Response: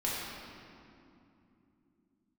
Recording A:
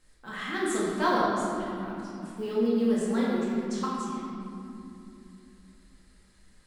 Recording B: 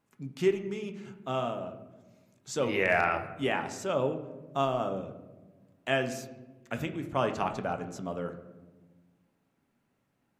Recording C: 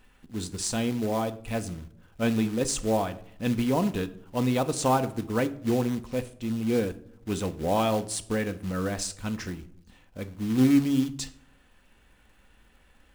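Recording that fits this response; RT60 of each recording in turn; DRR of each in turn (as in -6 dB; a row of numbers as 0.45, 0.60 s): A; 2.9, 1.3, 0.70 s; -7.0, 6.0, 9.5 dB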